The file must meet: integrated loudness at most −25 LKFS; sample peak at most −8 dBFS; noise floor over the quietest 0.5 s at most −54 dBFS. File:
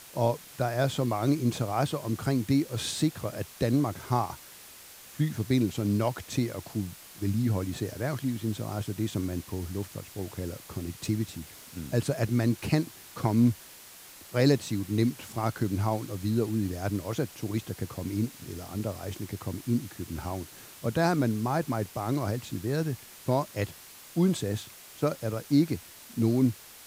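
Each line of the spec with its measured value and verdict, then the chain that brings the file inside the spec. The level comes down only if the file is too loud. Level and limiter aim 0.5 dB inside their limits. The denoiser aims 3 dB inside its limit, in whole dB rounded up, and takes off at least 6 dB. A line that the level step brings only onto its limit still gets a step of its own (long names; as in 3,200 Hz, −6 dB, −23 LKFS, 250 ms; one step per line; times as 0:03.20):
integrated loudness −30.0 LKFS: in spec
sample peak −10.0 dBFS: in spec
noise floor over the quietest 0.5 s −49 dBFS: out of spec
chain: broadband denoise 8 dB, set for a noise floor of −49 dBFS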